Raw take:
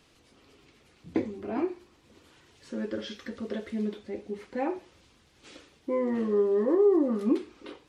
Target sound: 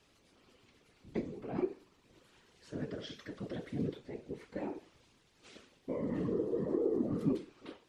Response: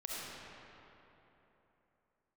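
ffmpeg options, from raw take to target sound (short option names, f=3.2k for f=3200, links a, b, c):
-filter_complex "[0:a]acrossover=split=380|3000[a][b][c];[b]acompressor=threshold=-36dB:ratio=6[d];[a][d][c]amix=inputs=3:normalize=0,afftfilt=real='hypot(re,im)*cos(2*PI*random(0))':imag='hypot(re,im)*sin(2*PI*random(1))':win_size=512:overlap=0.75"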